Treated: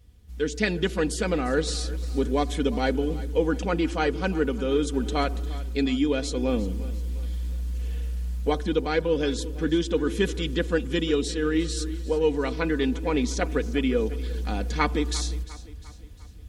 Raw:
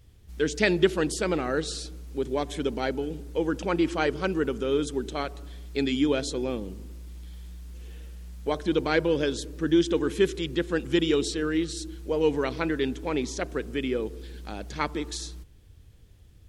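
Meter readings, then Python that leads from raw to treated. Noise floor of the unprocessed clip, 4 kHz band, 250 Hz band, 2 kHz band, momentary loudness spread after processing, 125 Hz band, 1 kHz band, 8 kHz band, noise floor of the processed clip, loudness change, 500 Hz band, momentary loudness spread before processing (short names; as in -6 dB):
-53 dBFS, +1.0 dB, +1.5 dB, +0.5 dB, 7 LU, +6.0 dB, +2.5 dB, +2.0 dB, -43 dBFS, +1.0 dB, +1.0 dB, 18 LU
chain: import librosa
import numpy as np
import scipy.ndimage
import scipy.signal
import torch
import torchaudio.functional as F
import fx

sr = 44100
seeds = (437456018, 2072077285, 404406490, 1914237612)

p1 = scipy.signal.sosfilt(scipy.signal.butter(2, 52.0, 'highpass', fs=sr, output='sos'), x)
p2 = fx.low_shelf(p1, sr, hz=98.0, db=10.5)
p3 = p2 + 0.55 * np.pad(p2, (int(4.1 * sr / 1000.0), 0))[:len(p2)]
p4 = fx.rider(p3, sr, range_db=4, speed_s=0.5)
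y = p4 + fx.echo_feedback(p4, sr, ms=351, feedback_pct=49, wet_db=-17.5, dry=0)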